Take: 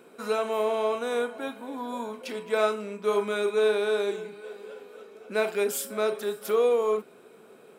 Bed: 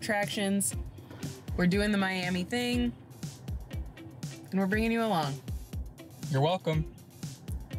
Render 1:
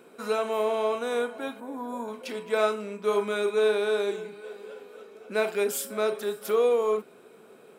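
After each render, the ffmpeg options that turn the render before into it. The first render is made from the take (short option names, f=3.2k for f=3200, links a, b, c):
-filter_complex "[0:a]asettb=1/sr,asplit=3[a][b][c];[a]atrim=end=1.604[d];[b]atrim=start=1.6:end=2.08,asetpts=PTS-STARTPTS,afade=t=in:d=0.004:c=qsin,afade=t=out:st=0.476:d=0.004:c=qsin,equalizer=f=3.4k:t=o:w=1.4:g=-11.5[e];[c]atrim=start=2.076[f];[d][e]acrossfade=d=0.004:c1=hsin:c2=qsin[g];[g][f]acrossfade=d=0.004:c1=qsin:c2=hsin"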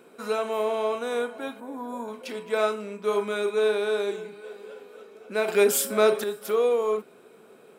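-filter_complex "[0:a]asettb=1/sr,asplit=3[a][b][c];[a]atrim=end=5.484[d];[b]atrim=start=5.48:end=6.24,asetpts=PTS-STARTPTS,afade=t=in:d=0.004:c=qsin,afade=t=out:st=0.756:d=0.004:c=qsin,acontrast=82[e];[c]atrim=start=6.236[f];[d][e]acrossfade=d=0.004:c1=hsin:c2=qsin[g];[g][f]acrossfade=d=0.004:c1=qsin:c2=hsin"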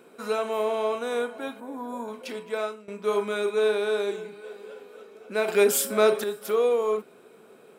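-filter_complex "[0:a]asplit=2[a][b];[a]atrim=end=2.88,asetpts=PTS-STARTPTS,afade=t=out:st=2.31:d=0.57:silence=0.133352[c];[b]atrim=start=2.88,asetpts=PTS-STARTPTS,afade=t=in:d=0.004:c=hsin:silence=0.133352[d];[c][d]concat=n=2:v=0:a=1"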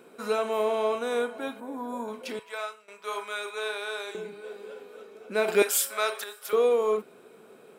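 -filter_complex "[0:a]asettb=1/sr,asplit=3[a][b][c];[a]atrim=end=2.394[d];[b]atrim=start=2.39:end=4.15,asetpts=PTS-STARTPTS,afade=t=in:d=0.004:c=qsin,afade=t=out:st=1.756:d=0.004:c=qsin,highpass=890[e];[c]atrim=start=4.146[f];[d][e]acrossfade=d=0.004:c1=hsin:c2=qsin[g];[g][f]acrossfade=d=0.004:c1=qsin:c2=hsin,asettb=1/sr,asplit=3[h][i][j];[h]atrim=end=5.624[k];[i]atrim=start=5.62:end=6.53,asetpts=PTS-STARTPTS,afade=t=in:d=0.004:c=qsin,afade=t=out:st=0.906:d=0.004:c=qsin,highpass=1k[l];[j]atrim=start=6.526[m];[k][l]acrossfade=d=0.004:c1=hsin:c2=qsin[n];[n][m]acrossfade=d=0.004:c1=qsin:c2=hsin"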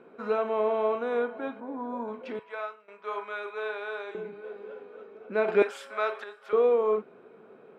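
-af "lowpass=1.9k"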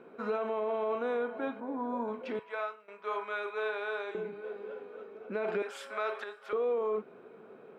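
-af "acompressor=threshold=-27dB:ratio=2.5,alimiter=level_in=0.5dB:limit=-24dB:level=0:latency=1:release=30,volume=-0.5dB"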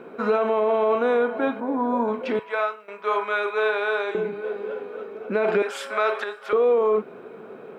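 -af "volume=11.5dB"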